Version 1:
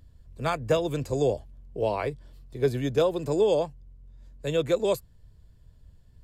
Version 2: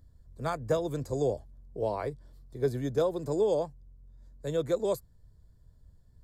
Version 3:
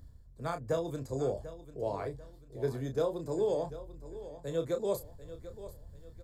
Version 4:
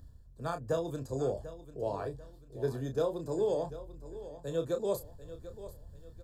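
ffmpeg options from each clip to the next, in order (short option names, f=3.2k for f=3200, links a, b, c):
-af "equalizer=f=2.7k:w=2.5:g=-14.5,volume=-4dB"
-filter_complex "[0:a]areverse,acompressor=mode=upward:threshold=-34dB:ratio=2.5,areverse,asplit=2[a][b];[b]adelay=30,volume=-7.5dB[c];[a][c]amix=inputs=2:normalize=0,aecho=1:1:742|1484|2226:0.188|0.0697|0.0258,volume=-4.5dB"
-af "asuperstop=centerf=2100:order=8:qfactor=4.6"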